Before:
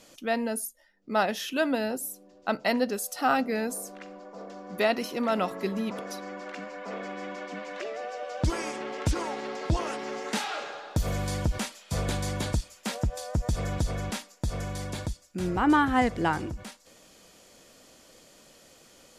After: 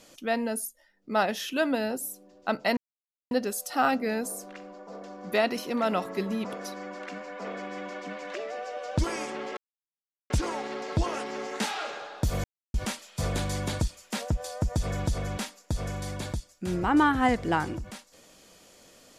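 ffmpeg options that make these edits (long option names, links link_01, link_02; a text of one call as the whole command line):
ffmpeg -i in.wav -filter_complex "[0:a]asplit=5[link_01][link_02][link_03][link_04][link_05];[link_01]atrim=end=2.77,asetpts=PTS-STARTPTS,afade=type=out:start_time=2.766:duration=0.004:curve=hsin,apad=pad_dur=0.54[link_06];[link_02]atrim=start=2.77:end=9.03,asetpts=PTS-STARTPTS,afade=type=in:duration=0.004:curve=hsin,afade=type=out:start_time=6.256:duration=0.004:curve=hsin,apad=pad_dur=0.73[link_07];[link_03]atrim=start=9.03:end=11.17,asetpts=PTS-STARTPTS,afade=type=in:duration=0.004:curve=hsin,afade=type=out:start_time=2.136:duration=0.004:curve=hsin[link_08];[link_04]atrim=start=11.17:end=11.47,asetpts=PTS-STARTPTS,volume=0[link_09];[link_05]atrim=start=11.47,asetpts=PTS-STARTPTS,afade=type=in:duration=0.004:curve=hsin[link_10];[link_06][link_07][link_08][link_09][link_10]concat=n=5:v=0:a=1" out.wav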